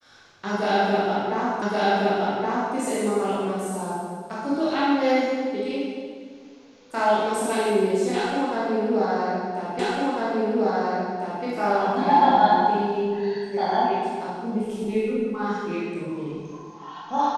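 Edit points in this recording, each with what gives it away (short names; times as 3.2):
1.62 repeat of the last 1.12 s
9.79 repeat of the last 1.65 s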